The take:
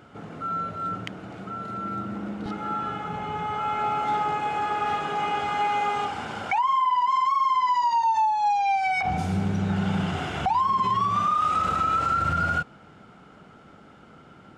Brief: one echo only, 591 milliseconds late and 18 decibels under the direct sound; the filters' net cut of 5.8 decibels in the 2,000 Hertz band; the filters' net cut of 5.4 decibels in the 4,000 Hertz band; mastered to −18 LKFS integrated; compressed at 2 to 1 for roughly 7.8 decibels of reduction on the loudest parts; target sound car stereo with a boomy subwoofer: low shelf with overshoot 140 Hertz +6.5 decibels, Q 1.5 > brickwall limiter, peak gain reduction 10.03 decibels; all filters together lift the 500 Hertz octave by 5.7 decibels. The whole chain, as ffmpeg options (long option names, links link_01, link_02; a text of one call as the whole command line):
ffmpeg -i in.wav -af "equalizer=frequency=500:width_type=o:gain=8.5,equalizer=frequency=2000:width_type=o:gain=-8,equalizer=frequency=4000:width_type=o:gain=-4,acompressor=threshold=-33dB:ratio=2,lowshelf=frequency=140:width_type=q:width=1.5:gain=6.5,aecho=1:1:591:0.126,volume=18dB,alimiter=limit=-11dB:level=0:latency=1" out.wav